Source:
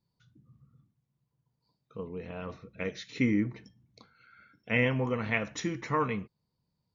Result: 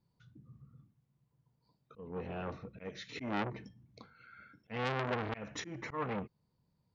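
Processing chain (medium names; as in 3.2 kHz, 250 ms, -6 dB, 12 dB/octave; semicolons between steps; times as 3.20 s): treble shelf 3.5 kHz -10 dB; slow attack 283 ms; transformer saturation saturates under 2.2 kHz; trim +3.5 dB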